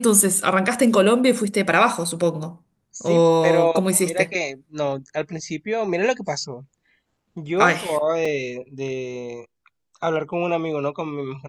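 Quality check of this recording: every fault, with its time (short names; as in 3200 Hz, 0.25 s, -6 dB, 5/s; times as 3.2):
8.25 gap 4.3 ms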